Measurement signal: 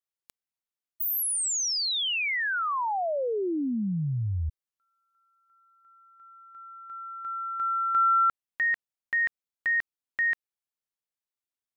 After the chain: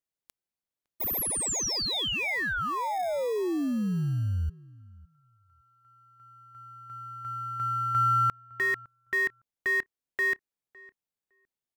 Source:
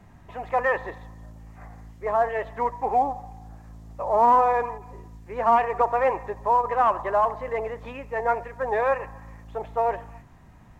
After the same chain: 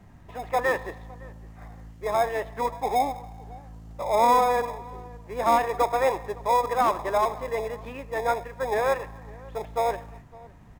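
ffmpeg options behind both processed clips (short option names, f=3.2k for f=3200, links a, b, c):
-filter_complex "[0:a]asplit=2[a][b];[b]acrusher=samples=30:mix=1:aa=0.000001,volume=-10dB[c];[a][c]amix=inputs=2:normalize=0,asplit=2[d][e];[e]adelay=559,lowpass=f=1.9k:p=1,volume=-22dB,asplit=2[f][g];[g]adelay=559,lowpass=f=1.9k:p=1,volume=0.16[h];[d][f][h]amix=inputs=3:normalize=0,volume=-2dB"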